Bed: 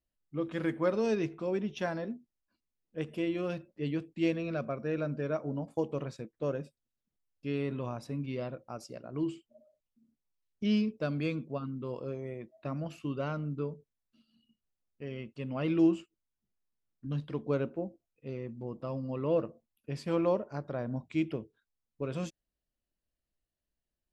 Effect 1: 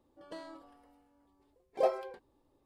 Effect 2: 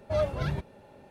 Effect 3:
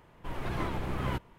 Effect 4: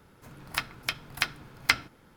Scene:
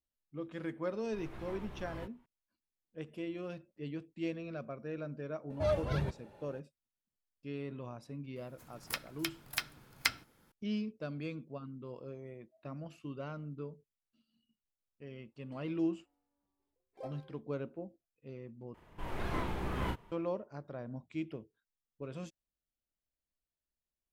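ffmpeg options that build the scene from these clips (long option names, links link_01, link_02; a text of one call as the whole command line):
ffmpeg -i bed.wav -i cue0.wav -i cue1.wav -i cue2.wav -i cue3.wav -filter_complex "[3:a]asplit=2[link_01][link_02];[0:a]volume=-8dB[link_03];[link_01]asplit=2[link_04][link_05];[link_05]adelay=18,volume=-4dB[link_06];[link_04][link_06]amix=inputs=2:normalize=0[link_07];[4:a]aemphasis=mode=production:type=cd[link_08];[link_02]asplit=2[link_09][link_10];[link_10]adelay=35,volume=-3.5dB[link_11];[link_09][link_11]amix=inputs=2:normalize=0[link_12];[link_03]asplit=2[link_13][link_14];[link_13]atrim=end=18.744[link_15];[link_12]atrim=end=1.38,asetpts=PTS-STARTPTS,volume=-4dB[link_16];[link_14]atrim=start=20.116[link_17];[link_07]atrim=end=1.38,asetpts=PTS-STARTPTS,volume=-15.5dB,afade=type=in:duration=0.004:curve=hsin,afade=type=out:start_time=1.376:duration=0.004:curve=hsin,adelay=880[link_18];[2:a]atrim=end=1.1,asetpts=PTS-STARTPTS,volume=-4dB,afade=type=in:duration=0.004:curve=hsin,afade=type=out:start_time=1.096:duration=0.004:curve=hsin,adelay=5500[link_19];[link_08]atrim=end=2.16,asetpts=PTS-STARTPTS,volume=-10dB,afade=type=in:duration=0.004:curve=hsin,afade=type=out:start_time=2.156:duration=0.004:curve=hsin,adelay=8360[link_20];[1:a]atrim=end=2.65,asetpts=PTS-STARTPTS,volume=-17dB,afade=type=in:duration=0.004:curve=hsin,afade=type=out:start_time=2.646:duration=0.004:curve=hsin,adelay=15200[link_21];[link_15][link_16]acrossfade=duration=0.004:curve1=hsin:curve2=hsin[link_22];[link_22][link_17]acrossfade=duration=0.004:curve1=hsin:curve2=hsin[link_23];[link_23][link_18][link_19][link_20][link_21]amix=inputs=5:normalize=0" out.wav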